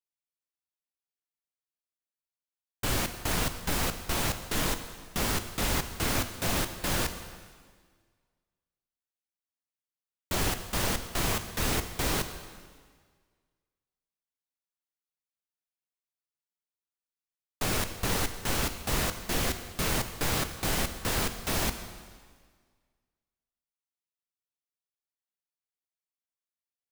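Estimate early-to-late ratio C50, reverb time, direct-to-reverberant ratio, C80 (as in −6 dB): 10.0 dB, 1.7 s, 8.5 dB, 11.5 dB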